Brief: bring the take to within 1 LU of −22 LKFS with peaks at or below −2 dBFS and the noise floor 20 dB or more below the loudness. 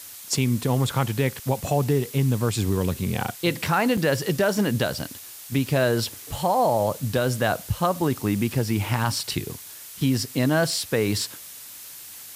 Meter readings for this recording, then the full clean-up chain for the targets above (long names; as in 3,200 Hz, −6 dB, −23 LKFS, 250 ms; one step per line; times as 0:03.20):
number of dropouts 1; longest dropout 5.3 ms; background noise floor −41 dBFS; target noise floor −44 dBFS; integrated loudness −24.0 LKFS; sample peak −8.0 dBFS; target loudness −22.0 LKFS
→ repair the gap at 0:03.97, 5.3 ms
noise reduction from a noise print 6 dB
level +2 dB